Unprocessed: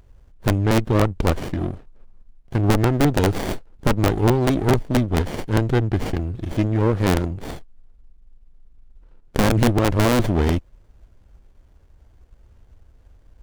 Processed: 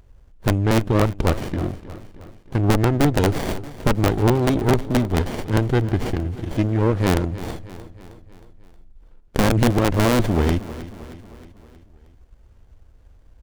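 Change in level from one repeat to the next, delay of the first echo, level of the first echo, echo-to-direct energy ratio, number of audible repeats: -5.0 dB, 314 ms, -16.0 dB, -14.5 dB, 4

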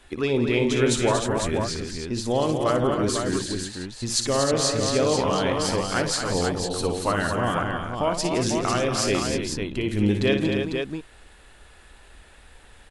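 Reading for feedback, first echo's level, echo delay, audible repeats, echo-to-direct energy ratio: no regular repeats, -8.5 dB, 58 ms, 5, -1.0 dB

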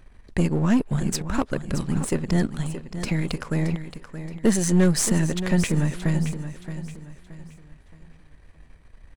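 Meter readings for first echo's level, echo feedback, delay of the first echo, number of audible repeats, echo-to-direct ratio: -11.0 dB, 35%, 623 ms, 3, -10.5 dB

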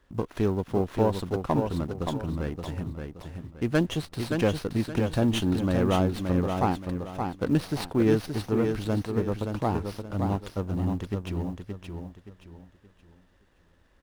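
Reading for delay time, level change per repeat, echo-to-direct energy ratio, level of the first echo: 573 ms, -10.0 dB, -5.0 dB, -5.5 dB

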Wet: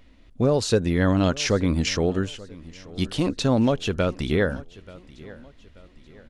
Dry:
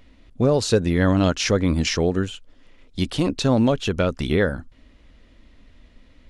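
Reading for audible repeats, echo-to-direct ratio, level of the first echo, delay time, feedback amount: 2, -19.5 dB, -20.5 dB, 883 ms, 41%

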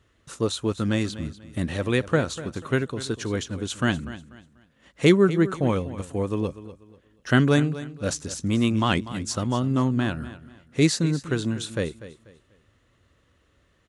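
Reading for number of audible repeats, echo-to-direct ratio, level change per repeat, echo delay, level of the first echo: 2, -14.5 dB, -10.5 dB, 244 ms, -15.0 dB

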